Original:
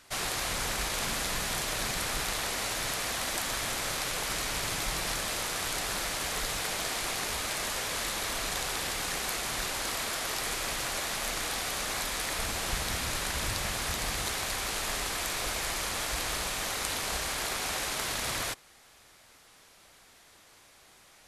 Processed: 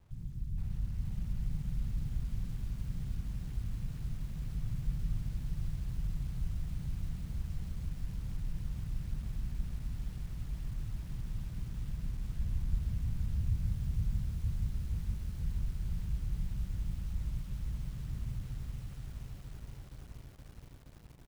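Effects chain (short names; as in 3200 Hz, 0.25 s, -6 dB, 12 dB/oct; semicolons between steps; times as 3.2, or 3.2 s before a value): inverse Chebyshev low-pass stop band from 690 Hz, stop band 70 dB; in parallel at +0.5 dB: compressor 12:1, threshold -53 dBFS, peak gain reduction 24.5 dB; on the sum: requantised 12-bit, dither none; feedback echo 0.163 s, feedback 29%, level -5 dB; lo-fi delay 0.472 s, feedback 80%, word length 10-bit, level -4 dB; gain +3 dB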